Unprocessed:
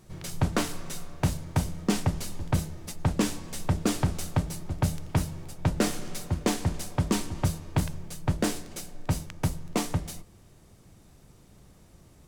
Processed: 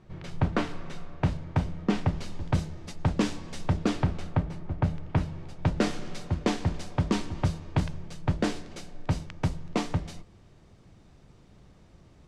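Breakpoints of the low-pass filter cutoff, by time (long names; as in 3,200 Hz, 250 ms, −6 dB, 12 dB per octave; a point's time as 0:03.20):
0:01.89 2,900 Hz
0:02.49 5,000 Hz
0:03.67 5,000 Hz
0:04.42 2,200 Hz
0:04.94 2,200 Hz
0:05.69 4,600 Hz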